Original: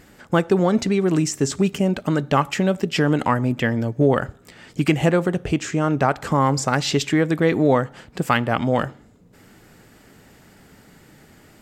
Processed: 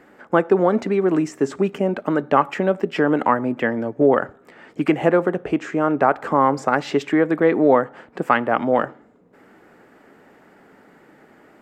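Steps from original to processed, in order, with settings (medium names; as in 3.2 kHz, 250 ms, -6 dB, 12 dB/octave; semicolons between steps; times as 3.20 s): three-band isolator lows -20 dB, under 230 Hz, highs -18 dB, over 2.1 kHz; trim +3.5 dB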